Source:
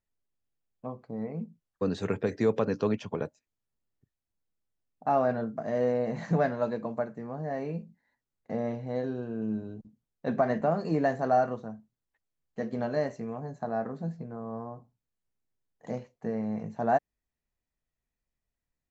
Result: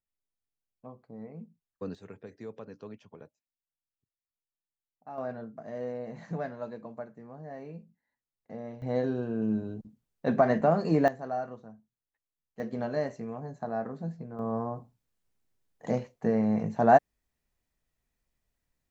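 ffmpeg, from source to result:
-af "asetnsamples=n=441:p=0,asendcmd='1.95 volume volume -17dB;5.18 volume volume -9dB;8.82 volume volume 3dB;11.08 volume volume -9dB;12.6 volume volume -1.5dB;14.39 volume volume 6dB',volume=-8.5dB"

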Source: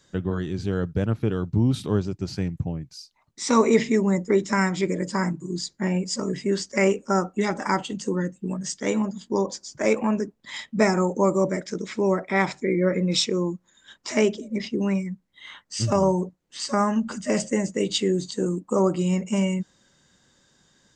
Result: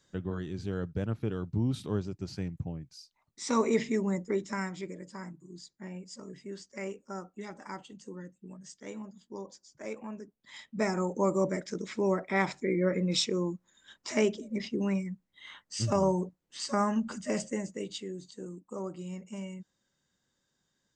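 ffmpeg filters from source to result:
-af "volume=3.5dB,afade=t=out:st=4.08:d=0.96:silence=0.334965,afade=t=in:st=10.26:d=1.15:silence=0.251189,afade=t=out:st=17.04:d=1.01:silence=0.281838"

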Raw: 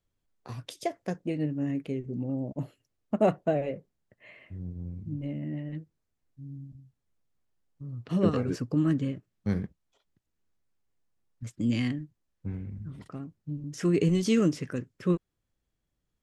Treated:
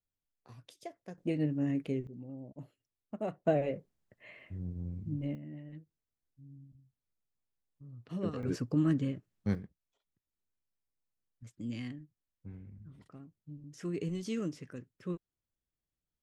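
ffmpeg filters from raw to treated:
-af "asetnsamples=n=441:p=0,asendcmd='1.18 volume volume -1.5dB;2.07 volume volume -13.5dB;3.45 volume volume -1.5dB;5.35 volume volume -11dB;8.43 volume volume -3dB;9.55 volume volume -12dB',volume=-14dB"

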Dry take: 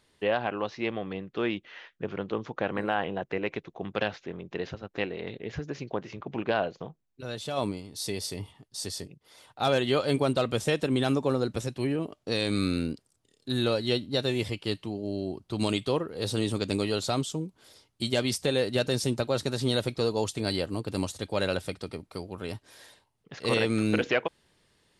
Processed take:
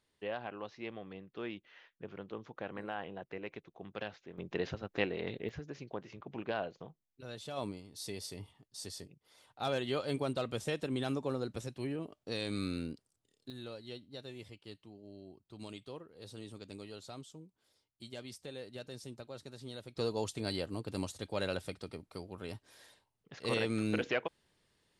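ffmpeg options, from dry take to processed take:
-af "asetnsamples=n=441:p=0,asendcmd='4.38 volume volume -2dB;5.49 volume volume -9.5dB;13.5 volume volume -19.5dB;19.96 volume volume -7.5dB',volume=-12.5dB"

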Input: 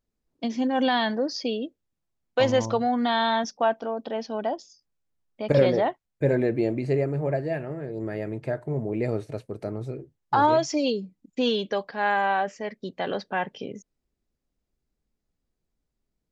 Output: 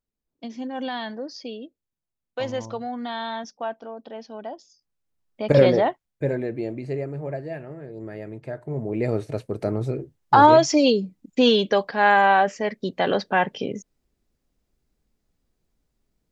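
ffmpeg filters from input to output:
-af "volume=16dB,afade=t=in:st=4.54:d=1.13:silence=0.266073,afade=t=out:st=5.67:d=0.73:silence=0.354813,afade=t=in:st=8.51:d=1.19:silence=0.266073"

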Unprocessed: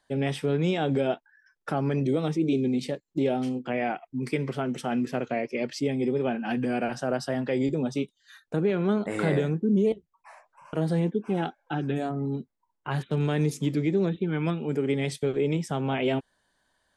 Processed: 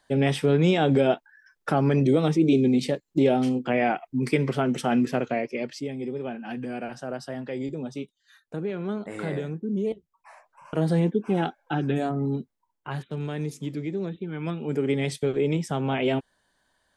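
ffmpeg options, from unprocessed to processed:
-af "volume=20.5dB,afade=t=out:st=4.98:d=0.89:silence=0.298538,afade=t=in:st=9.71:d=1.18:silence=0.375837,afade=t=out:st=12.3:d=0.79:silence=0.375837,afade=t=in:st=14.36:d=0.45:silence=0.446684"

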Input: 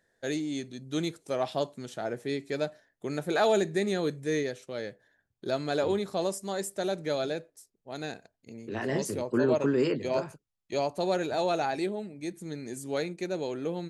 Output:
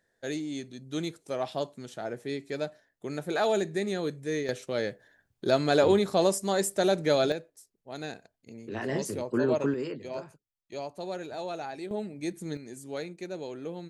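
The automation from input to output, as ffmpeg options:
-af "asetnsamples=n=441:p=0,asendcmd='4.49 volume volume 6dB;7.32 volume volume -1dB;9.74 volume volume -8dB;11.91 volume volume 2.5dB;12.57 volume volume -5dB',volume=-2dB"

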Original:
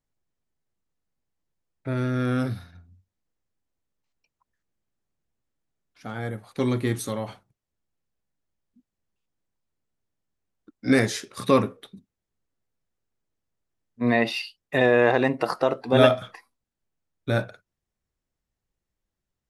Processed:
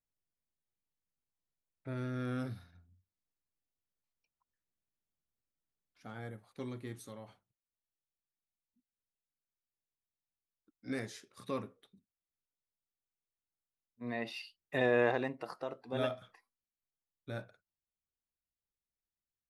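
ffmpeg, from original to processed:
-af "volume=-3dB,afade=t=out:st=6.13:d=0.59:silence=0.473151,afade=t=in:st=14.06:d=0.95:silence=0.334965,afade=t=out:st=15.01:d=0.34:silence=0.375837"

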